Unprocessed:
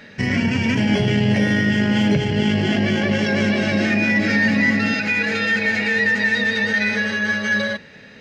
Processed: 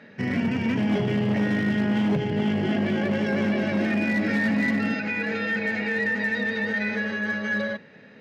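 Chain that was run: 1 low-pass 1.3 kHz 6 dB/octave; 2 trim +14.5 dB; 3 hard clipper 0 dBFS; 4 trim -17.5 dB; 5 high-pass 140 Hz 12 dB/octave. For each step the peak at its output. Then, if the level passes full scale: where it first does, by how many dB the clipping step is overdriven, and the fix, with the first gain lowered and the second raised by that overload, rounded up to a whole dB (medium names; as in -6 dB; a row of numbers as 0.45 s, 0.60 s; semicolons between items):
-8.0 dBFS, +6.5 dBFS, 0.0 dBFS, -17.5 dBFS, -13.0 dBFS; step 2, 6.5 dB; step 2 +7.5 dB, step 4 -10.5 dB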